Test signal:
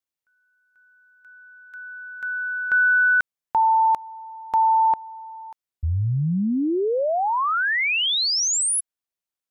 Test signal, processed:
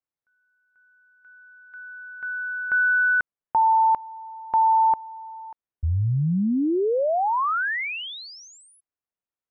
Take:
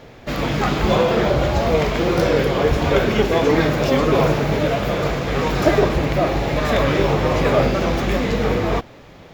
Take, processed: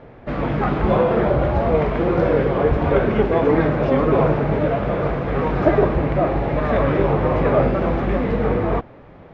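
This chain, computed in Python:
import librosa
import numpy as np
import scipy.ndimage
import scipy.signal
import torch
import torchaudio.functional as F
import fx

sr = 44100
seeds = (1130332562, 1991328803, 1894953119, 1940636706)

y = scipy.signal.sosfilt(scipy.signal.butter(2, 1600.0, 'lowpass', fs=sr, output='sos'), x)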